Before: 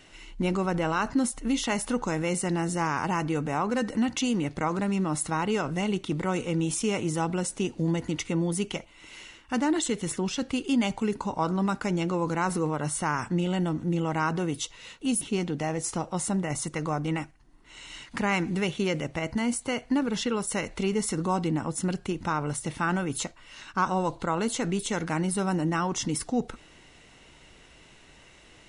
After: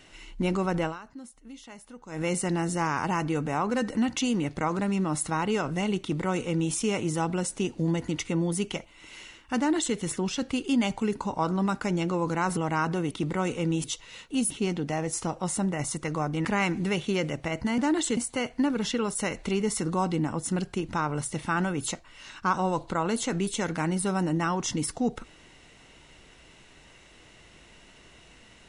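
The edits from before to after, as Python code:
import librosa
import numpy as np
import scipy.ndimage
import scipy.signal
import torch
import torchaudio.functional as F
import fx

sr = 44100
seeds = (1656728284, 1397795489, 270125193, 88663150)

y = fx.edit(x, sr, fx.fade_down_up(start_s=0.84, length_s=1.38, db=-18.5, fade_s=0.18, curve='qua'),
    fx.duplicate(start_s=6.0, length_s=0.73, to_s=14.55),
    fx.duplicate(start_s=9.57, length_s=0.39, to_s=19.49),
    fx.cut(start_s=12.57, length_s=1.44),
    fx.cut(start_s=17.16, length_s=1.0), tone=tone)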